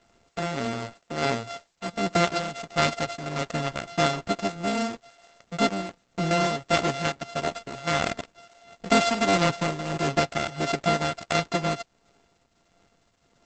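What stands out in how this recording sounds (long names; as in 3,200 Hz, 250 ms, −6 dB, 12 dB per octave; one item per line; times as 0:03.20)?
a buzz of ramps at a fixed pitch in blocks of 64 samples
tremolo triangle 1.5 Hz, depth 70%
a quantiser's noise floor 12 bits, dither triangular
Opus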